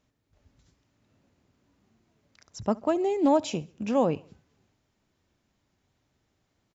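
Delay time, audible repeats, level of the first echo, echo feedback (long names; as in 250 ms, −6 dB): 68 ms, 2, −24.0 dB, 50%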